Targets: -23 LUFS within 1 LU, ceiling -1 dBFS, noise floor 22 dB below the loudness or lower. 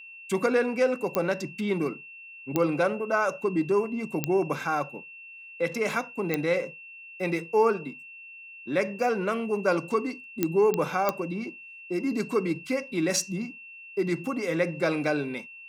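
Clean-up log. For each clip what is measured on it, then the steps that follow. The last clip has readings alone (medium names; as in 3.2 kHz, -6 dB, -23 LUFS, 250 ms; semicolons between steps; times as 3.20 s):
clicks found 7; steady tone 2.7 kHz; tone level -43 dBFS; loudness -27.5 LUFS; peak level -8.5 dBFS; loudness target -23.0 LUFS
-> de-click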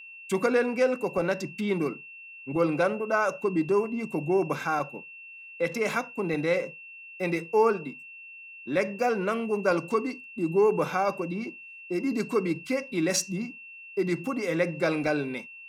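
clicks found 0; steady tone 2.7 kHz; tone level -43 dBFS
-> band-stop 2.7 kHz, Q 30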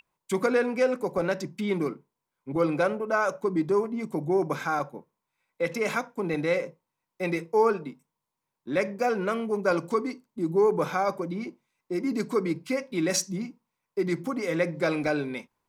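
steady tone not found; loudness -28.0 LUFS; peak level -10.5 dBFS; loudness target -23.0 LUFS
-> trim +5 dB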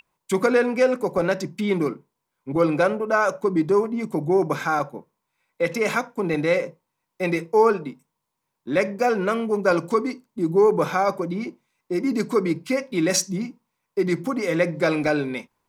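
loudness -23.0 LUFS; peak level -5.5 dBFS; noise floor -80 dBFS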